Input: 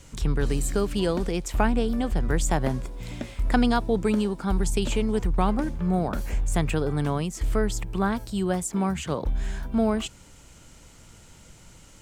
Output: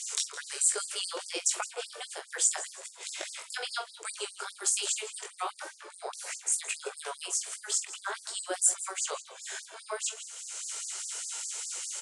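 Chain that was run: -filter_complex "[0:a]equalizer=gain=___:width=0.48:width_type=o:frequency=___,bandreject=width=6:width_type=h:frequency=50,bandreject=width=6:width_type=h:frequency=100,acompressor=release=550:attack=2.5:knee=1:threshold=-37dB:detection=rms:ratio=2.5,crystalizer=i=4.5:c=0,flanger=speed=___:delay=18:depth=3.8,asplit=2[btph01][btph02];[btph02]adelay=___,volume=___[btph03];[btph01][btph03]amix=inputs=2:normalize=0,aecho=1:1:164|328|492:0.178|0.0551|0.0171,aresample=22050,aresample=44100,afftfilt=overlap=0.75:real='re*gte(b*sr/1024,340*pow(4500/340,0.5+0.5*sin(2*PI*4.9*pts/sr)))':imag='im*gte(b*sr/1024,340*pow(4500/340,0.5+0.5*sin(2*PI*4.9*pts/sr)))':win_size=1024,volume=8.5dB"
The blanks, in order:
3.5, 1.4k, 2.4, 44, -12dB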